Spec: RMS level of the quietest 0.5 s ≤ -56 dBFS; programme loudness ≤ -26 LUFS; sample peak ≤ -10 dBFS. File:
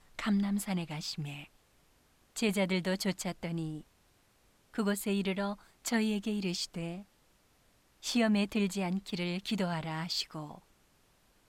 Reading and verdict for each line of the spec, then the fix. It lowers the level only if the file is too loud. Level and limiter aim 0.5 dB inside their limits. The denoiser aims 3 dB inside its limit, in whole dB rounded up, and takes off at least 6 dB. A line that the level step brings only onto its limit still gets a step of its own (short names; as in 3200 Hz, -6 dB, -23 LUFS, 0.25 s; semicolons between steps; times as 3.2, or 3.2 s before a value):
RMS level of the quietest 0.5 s -68 dBFS: OK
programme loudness -33.5 LUFS: OK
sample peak -18.5 dBFS: OK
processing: none